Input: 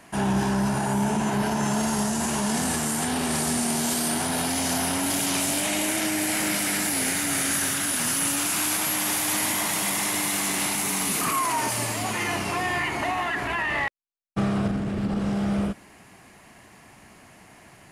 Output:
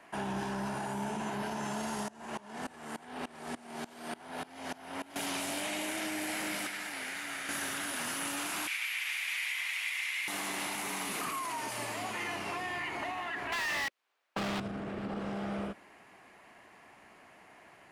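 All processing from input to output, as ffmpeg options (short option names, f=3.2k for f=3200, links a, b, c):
-filter_complex "[0:a]asettb=1/sr,asplit=3[a][b][c];[a]atrim=end=2.084[d];[b]atrim=start=2.08:end=5.16,asetpts=PTS-STARTPTS,afade=t=in:d=0.004:c=qsin,afade=t=out:st=3.076:d=0.004:c=qsin,highshelf=f=4.7k:g=-8,aeval=exprs='val(0)*pow(10,-23*if(lt(mod(-3.4*n/s,1),2*abs(-3.4)/1000),1-mod(-3.4*n/s,1)/(2*abs(-3.4)/1000),(mod(-3.4*n/s,1)-2*abs(-3.4)/1000)/(1-2*abs(-3.4)/1000))/20)':c=same[e];[c]atrim=start=5.156[f];[d][e]acrossfade=d=0.004:c1=hsin:c2=qsin[g];[g][f]acrossfade=d=0.004:c1=qsin:c2=hsin,asettb=1/sr,asplit=3[h][i][j];[h]atrim=end=6.664[k];[i]atrim=start=6.66:end=7.49,asetpts=PTS-STARTPTS,afade=t=in:d=0.004:c=qsin,afade=t=out:st=0.826:d=0.004:c=qsin,equalizer=f=1.8k:t=o:w=2.8:g=9.5,acrossover=split=250|3300[l][m][n];[l]acompressor=threshold=-45dB:ratio=4[o];[m]acompressor=threshold=-37dB:ratio=4[p];[n]acompressor=threshold=-33dB:ratio=4[q];[o][p][q]amix=inputs=3:normalize=0[r];[j]atrim=start=7.486[s];[k][r]acrossfade=d=0.004:c1=hsin:c2=qsin[t];[t][s]acrossfade=d=0.004:c1=qsin:c2=hsin,asettb=1/sr,asplit=3[u][v][w];[u]atrim=end=8.674[x];[v]atrim=start=8.67:end=10.28,asetpts=PTS-STARTPTS,afade=t=in:d=0.004:c=qsin,afade=t=out:st=1.606:d=0.004:c=qsin,highpass=f=2.3k:t=q:w=3.8,highshelf=f=3.9k:g=-8[y];[w]atrim=start=10.276[z];[x][y]acrossfade=d=0.004:c1=hsin:c2=qsin[aa];[aa][z]acrossfade=d=0.004:c1=qsin:c2=hsin,asettb=1/sr,asplit=3[ab][ac][ad];[ab]atrim=end=13.524[ae];[ac]atrim=start=13.52:end=14.6,asetpts=PTS-STARTPTS,afade=t=in:d=0.004:c=qsin,afade=t=out:st=1.076:d=0.004:c=qsin,highshelf=f=3.1k:g=-10,asplit=2[af][ag];[ag]highpass=f=720:p=1,volume=39dB,asoftclip=type=tanh:threshold=-14.5dB[ah];[af][ah]amix=inputs=2:normalize=0,lowpass=f=7k:p=1,volume=-6dB[ai];[ad]atrim=start=14.596[aj];[ae][ai]acrossfade=d=0.004:c1=hsin:c2=qsin[ak];[ak][aj]acrossfade=d=0.004:c1=qsin:c2=hsin,bass=f=250:g=-13,treble=f=4k:g=-11,acrossover=split=260|3000[al][am][an];[am]acompressor=threshold=-32dB:ratio=6[ao];[al][ao][an]amix=inputs=3:normalize=0,volume=-4dB"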